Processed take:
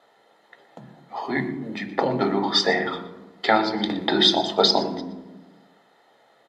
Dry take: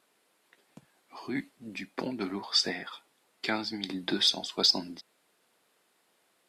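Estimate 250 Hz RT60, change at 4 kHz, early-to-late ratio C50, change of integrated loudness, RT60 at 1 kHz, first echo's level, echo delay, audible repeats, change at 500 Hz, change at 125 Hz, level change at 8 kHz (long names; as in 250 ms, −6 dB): 1.5 s, +6.0 dB, 10.0 dB, +7.5 dB, 1.1 s, −17.0 dB, 121 ms, 1, +15.0 dB, +11.5 dB, +0.5 dB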